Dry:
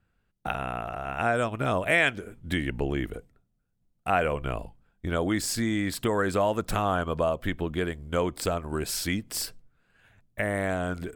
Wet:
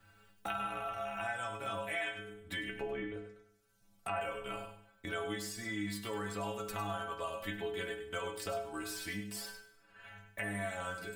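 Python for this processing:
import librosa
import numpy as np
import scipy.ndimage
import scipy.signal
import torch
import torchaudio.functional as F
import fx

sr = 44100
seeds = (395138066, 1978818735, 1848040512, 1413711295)

p1 = fx.env_lowpass_down(x, sr, base_hz=1700.0, full_db=-26.5, at=(2.8, 4.21))
p2 = fx.low_shelf(p1, sr, hz=470.0, db=-10.0)
p3 = fx.rider(p2, sr, range_db=4, speed_s=0.5)
p4 = fx.stiff_resonator(p3, sr, f0_hz=100.0, decay_s=0.5, stiffness=0.008)
p5 = p4 + fx.echo_single(p4, sr, ms=99, db=-11.5, dry=0)
p6 = fx.rev_schroeder(p5, sr, rt60_s=0.61, comb_ms=33, drr_db=13.0)
p7 = fx.band_squash(p6, sr, depth_pct=70)
y = p7 * 10.0 ** (3.0 / 20.0)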